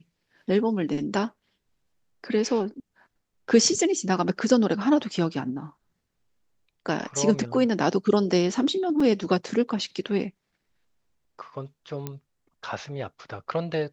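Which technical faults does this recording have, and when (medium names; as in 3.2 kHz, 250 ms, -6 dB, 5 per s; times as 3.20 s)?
9.00 s: dropout 4.2 ms
12.07 s: pop -17 dBFS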